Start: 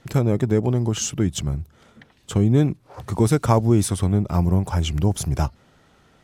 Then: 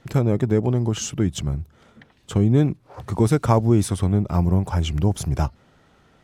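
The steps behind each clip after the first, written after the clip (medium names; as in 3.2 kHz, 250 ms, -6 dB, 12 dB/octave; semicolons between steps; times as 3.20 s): treble shelf 4.4 kHz -5 dB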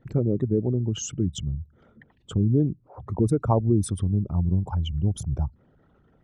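resonances exaggerated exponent 2; trim -4 dB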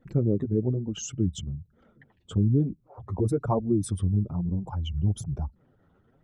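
flange 1.1 Hz, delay 3.5 ms, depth 8.5 ms, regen -2%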